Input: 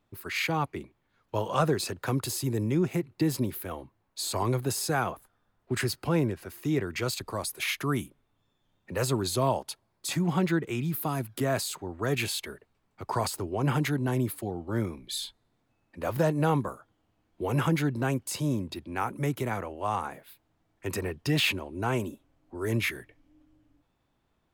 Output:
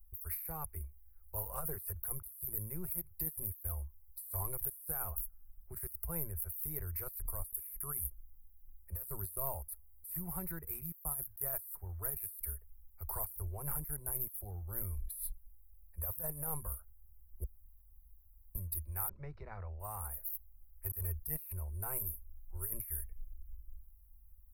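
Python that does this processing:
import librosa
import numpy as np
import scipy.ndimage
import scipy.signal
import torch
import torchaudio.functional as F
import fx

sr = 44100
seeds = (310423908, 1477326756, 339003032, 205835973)

y = fx.steep_lowpass(x, sr, hz=4700.0, slope=48, at=(19.09, 19.8))
y = fx.edit(y, sr, fx.room_tone_fill(start_s=17.44, length_s=1.11), tone=tone)
y = scipy.signal.sosfilt(scipy.signal.cheby2(4, 40, [110.0, 7300.0], 'bandstop', fs=sr, output='sos'), y)
y = fx.over_compress(y, sr, threshold_db=-59.0, ratio=-1.0)
y = F.gain(torch.from_numpy(y), 17.5).numpy()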